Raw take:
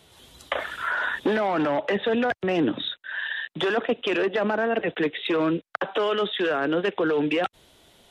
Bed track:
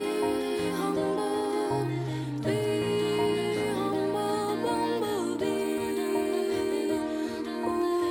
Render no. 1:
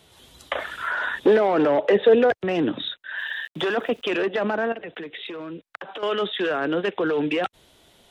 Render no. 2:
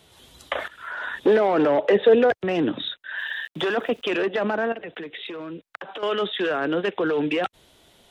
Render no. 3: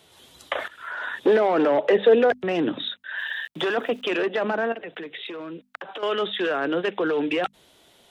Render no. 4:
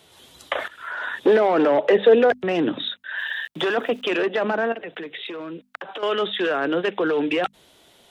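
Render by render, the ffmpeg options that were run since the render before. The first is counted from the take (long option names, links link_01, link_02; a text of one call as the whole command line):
ffmpeg -i in.wav -filter_complex "[0:a]asettb=1/sr,asplit=3[link_01][link_02][link_03];[link_01]atrim=end=1.264[link_04];[link_02]atrim=start=1.26:end=2.42,asetpts=PTS-STARTPTS,afade=type=in:duration=0.004:curve=qsin,afade=type=out:start_time=1.156:duration=0.004:curve=qsin,equalizer=frequency=450:width=1.9:gain=10.5[link_05];[link_03]atrim=start=2.416[link_06];[link_04][link_05]acrossfade=duration=0.004:curve1=hsin:curve2=qsin[link_07];[link_07][link_06]acrossfade=duration=0.004:curve1=qsin:curve2=hsin,asettb=1/sr,asplit=3[link_08][link_09][link_10];[link_08]atrim=end=3.174[link_11];[link_09]atrim=start=3.17:end=4.1,asetpts=PTS-STARTPTS,afade=type=in:duration=0.004:curve=qsin,afade=type=out:start_time=0.926:duration=0.004:curve=qsin,aeval=exprs='val(0)*gte(abs(val(0)),0.00299)':channel_layout=same[link_12];[link_10]atrim=start=4.096[link_13];[link_11][link_12]acrossfade=duration=0.004:curve1=hsin:curve2=qsin[link_14];[link_14][link_13]acrossfade=duration=0.004:curve1=qsin:curve2=hsin,asettb=1/sr,asplit=3[link_15][link_16][link_17];[link_15]atrim=end=4.724[link_18];[link_16]atrim=start=4.72:end=6.03,asetpts=PTS-STARTPTS,afade=type=in:duration=0.004:curve=qsin,afade=type=out:start_time=1.306:duration=0.004:curve=qsin,acompressor=threshold=-31dB:ratio=12:attack=3.2:release=140:knee=1:detection=peak[link_19];[link_17]atrim=start=6.026[link_20];[link_18][link_19]acrossfade=duration=0.004:curve1=hsin:curve2=qsin[link_21];[link_21][link_20]acrossfade=duration=0.004:curve1=qsin:curve2=hsin" out.wav
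ffmpeg -i in.wav -filter_complex "[0:a]asplit=2[link_01][link_02];[link_01]atrim=end=0.68,asetpts=PTS-STARTPTS,afade=type=out:start_time=0.676:duration=0.004:curve=hsin:silence=0.188365[link_03];[link_02]atrim=start=0.68,asetpts=PTS-STARTPTS,afade=type=in:duration=0.73:silence=0.188365[link_04];[link_03][link_04]concat=n=2:v=0:a=1" out.wav
ffmpeg -i in.wav -af "lowshelf=frequency=94:gain=-10.5,bandreject=frequency=50:width_type=h:width=6,bandreject=frequency=100:width_type=h:width=6,bandreject=frequency=150:width_type=h:width=6,bandreject=frequency=200:width_type=h:width=6,bandreject=frequency=250:width_type=h:width=6" out.wav
ffmpeg -i in.wav -af "volume=2dB" out.wav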